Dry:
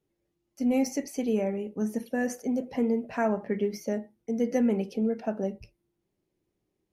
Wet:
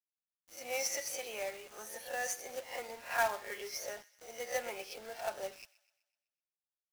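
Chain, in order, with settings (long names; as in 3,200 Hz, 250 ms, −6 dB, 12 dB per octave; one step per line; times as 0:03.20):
peak hold with a rise ahead of every peak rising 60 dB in 0.35 s
Bessel high-pass filter 970 Hz, order 4
comb filter 5.6 ms, depth 48%
log-companded quantiser 4 bits
delay with a high-pass on its return 126 ms, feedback 49%, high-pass 1,600 Hz, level −18.5 dB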